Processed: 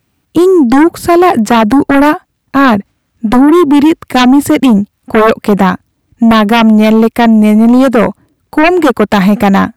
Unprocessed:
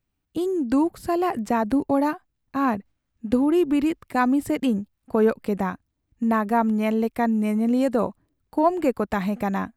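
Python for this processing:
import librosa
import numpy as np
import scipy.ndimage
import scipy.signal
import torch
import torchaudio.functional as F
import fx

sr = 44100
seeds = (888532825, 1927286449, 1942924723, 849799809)

p1 = scipy.signal.sosfilt(scipy.signal.butter(2, 80.0, 'highpass', fs=sr, output='sos'), x)
p2 = fx.rider(p1, sr, range_db=4, speed_s=2.0)
p3 = p1 + (p2 * librosa.db_to_amplitude(1.0))
y = fx.fold_sine(p3, sr, drive_db=9, ceiling_db=-2.0)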